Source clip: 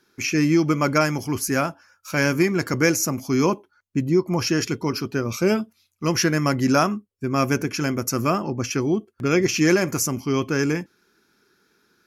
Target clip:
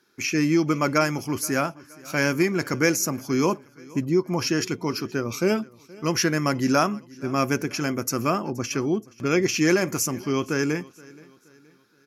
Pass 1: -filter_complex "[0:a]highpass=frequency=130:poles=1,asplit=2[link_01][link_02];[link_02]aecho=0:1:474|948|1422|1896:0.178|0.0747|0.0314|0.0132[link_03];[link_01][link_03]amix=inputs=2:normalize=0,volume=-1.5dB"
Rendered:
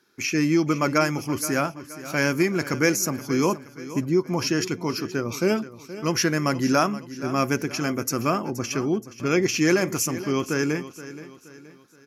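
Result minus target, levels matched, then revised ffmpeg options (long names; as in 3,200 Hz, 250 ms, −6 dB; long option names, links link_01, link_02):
echo-to-direct +8 dB
-filter_complex "[0:a]highpass=frequency=130:poles=1,asplit=2[link_01][link_02];[link_02]aecho=0:1:474|948|1422:0.0708|0.0297|0.0125[link_03];[link_01][link_03]amix=inputs=2:normalize=0,volume=-1.5dB"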